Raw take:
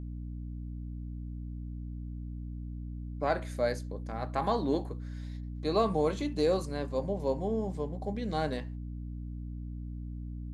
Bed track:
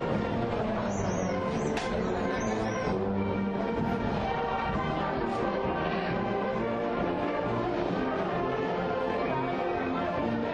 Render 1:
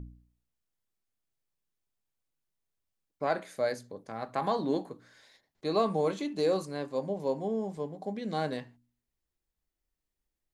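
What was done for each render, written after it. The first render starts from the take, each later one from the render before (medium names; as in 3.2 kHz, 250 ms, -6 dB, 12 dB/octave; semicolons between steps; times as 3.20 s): de-hum 60 Hz, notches 5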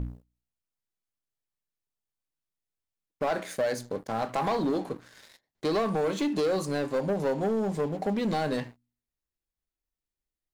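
compression 5:1, threshold -32 dBFS, peak gain reduction 9.5 dB; waveshaping leveller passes 3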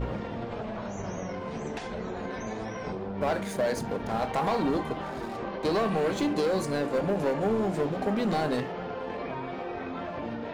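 add bed track -5.5 dB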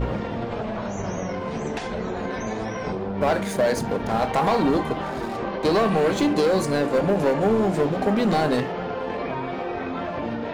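trim +6.5 dB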